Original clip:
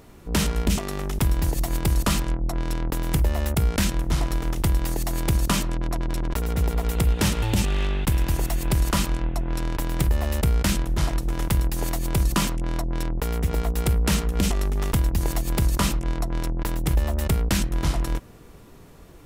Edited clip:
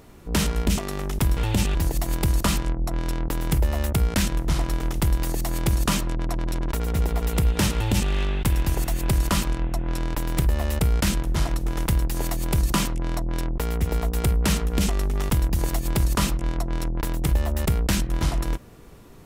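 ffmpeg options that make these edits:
ffmpeg -i in.wav -filter_complex "[0:a]asplit=3[link_01][link_02][link_03];[link_01]atrim=end=1.372[link_04];[link_02]atrim=start=7.358:end=7.742[link_05];[link_03]atrim=start=1.368[link_06];[link_04][link_05]acrossfade=duration=0.004:curve1=hsin:curve2=hsin[link_07];[link_07][link_06]acrossfade=duration=0.004:curve1=hsin:curve2=hsin" out.wav

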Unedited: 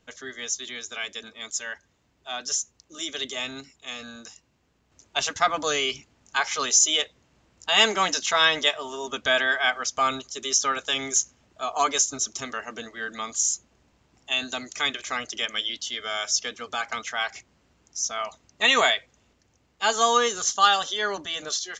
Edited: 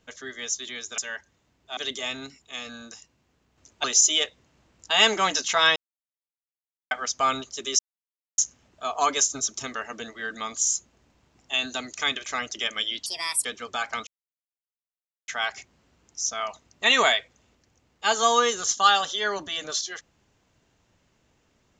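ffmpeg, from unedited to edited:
ffmpeg -i in.wav -filter_complex "[0:a]asplit=11[link_01][link_02][link_03][link_04][link_05][link_06][link_07][link_08][link_09][link_10][link_11];[link_01]atrim=end=0.982[link_12];[link_02]atrim=start=1.548:end=2.342[link_13];[link_03]atrim=start=3.108:end=5.182[link_14];[link_04]atrim=start=6.618:end=8.54,asetpts=PTS-STARTPTS,afade=type=out:start_time=1.918:duration=0.004:curve=hsin[link_15];[link_05]atrim=start=8.54:end=9.69,asetpts=PTS-STARTPTS,volume=0[link_16];[link_06]atrim=start=9.69:end=10.57,asetpts=PTS-STARTPTS,afade=type=in:duration=0.004:curve=hsin,afade=type=out:start_time=0.876:duration=0.004:curve=hsin[link_17];[link_07]atrim=start=10.57:end=11.16,asetpts=PTS-STARTPTS,volume=0[link_18];[link_08]atrim=start=11.16:end=15.844,asetpts=PTS-STARTPTS,afade=type=in:duration=0.004:curve=hsin[link_19];[link_09]atrim=start=15.84:end=16.44,asetpts=PTS-STARTPTS,asetrate=67914,aresample=44100[link_20];[link_10]atrim=start=16.436:end=17.06,asetpts=PTS-STARTPTS,afade=type=out:start_time=0.62:duration=0.004:curve=hsin,apad=pad_dur=1.21[link_21];[link_11]atrim=start=17.06,asetpts=PTS-STARTPTS,afade=type=in:duration=0.004:curve=hsin[link_22];[link_12][link_13]acrossfade=duration=0.004:curve1=hsin:curve2=hsin[link_23];[link_23][link_14]acrossfade=duration=0.004:curve1=hsin:curve2=hsin[link_24];[link_15][link_16][link_17][link_18][link_19]concat=n=5:v=0:a=1[link_25];[link_24][link_25]acrossfade=duration=0.004:curve1=hsin:curve2=hsin[link_26];[link_26][link_20]acrossfade=duration=0.004:curve1=hsin:curve2=hsin[link_27];[link_21][link_22]concat=n=2:v=0:a=1[link_28];[link_27][link_28]acrossfade=duration=0.004:curve1=hsin:curve2=hsin" out.wav

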